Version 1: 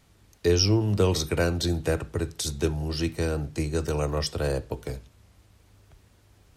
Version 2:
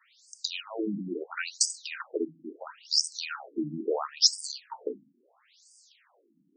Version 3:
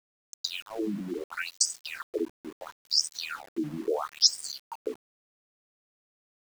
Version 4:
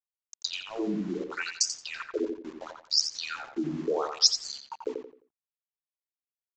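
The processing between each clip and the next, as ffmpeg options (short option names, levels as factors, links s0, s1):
-af "alimiter=limit=0.1:level=0:latency=1:release=12,aemphasis=mode=production:type=bsi,afftfilt=real='re*between(b*sr/1024,220*pow(6700/220,0.5+0.5*sin(2*PI*0.74*pts/sr))/1.41,220*pow(6700/220,0.5+0.5*sin(2*PI*0.74*pts/sr))*1.41)':imag='im*between(b*sr/1024,220*pow(6700/220,0.5+0.5*sin(2*PI*0.74*pts/sr))/1.41,220*pow(6700/220,0.5+0.5*sin(2*PI*0.74*pts/sr))*1.41)':win_size=1024:overlap=0.75,volume=2.11"
-af "aeval=exprs='val(0)*gte(abs(val(0)),0.00708)':c=same"
-filter_complex "[0:a]asplit=2[s0][s1];[s1]adelay=87,lowpass=f=3200:p=1,volume=0.596,asplit=2[s2][s3];[s3]adelay=87,lowpass=f=3200:p=1,volume=0.31,asplit=2[s4][s5];[s5]adelay=87,lowpass=f=3200:p=1,volume=0.31,asplit=2[s6][s7];[s7]adelay=87,lowpass=f=3200:p=1,volume=0.31[s8];[s2][s4][s6][s8]amix=inputs=4:normalize=0[s9];[s0][s9]amix=inputs=2:normalize=0,aresample=16000,aresample=44100"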